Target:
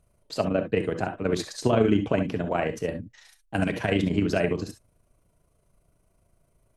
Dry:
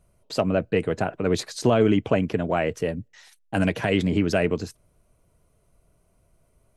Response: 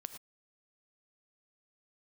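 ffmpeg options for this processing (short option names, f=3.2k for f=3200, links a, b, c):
-filter_complex "[0:a]tremolo=f=27:d=0.571[a];[1:a]atrim=start_sample=2205,asetrate=70560,aresample=44100[b];[a][b]afir=irnorm=-1:irlink=0,volume=7.5dB"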